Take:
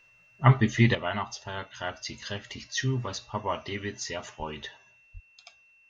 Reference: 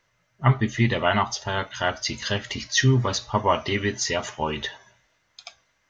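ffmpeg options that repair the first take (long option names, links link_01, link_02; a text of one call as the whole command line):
ffmpeg -i in.wav -filter_complex "[0:a]bandreject=frequency=2700:width=30,asplit=3[link_01][link_02][link_03];[link_01]afade=type=out:start_time=4.38:duration=0.02[link_04];[link_02]highpass=frequency=140:width=0.5412,highpass=frequency=140:width=1.3066,afade=type=in:start_time=4.38:duration=0.02,afade=type=out:start_time=4.5:duration=0.02[link_05];[link_03]afade=type=in:start_time=4.5:duration=0.02[link_06];[link_04][link_05][link_06]amix=inputs=3:normalize=0,asplit=3[link_07][link_08][link_09];[link_07]afade=type=out:start_time=5.13:duration=0.02[link_10];[link_08]highpass=frequency=140:width=0.5412,highpass=frequency=140:width=1.3066,afade=type=in:start_time=5.13:duration=0.02,afade=type=out:start_time=5.25:duration=0.02[link_11];[link_09]afade=type=in:start_time=5.25:duration=0.02[link_12];[link_10][link_11][link_12]amix=inputs=3:normalize=0,asetnsamples=nb_out_samples=441:pad=0,asendcmd='0.95 volume volume 9.5dB',volume=0dB" out.wav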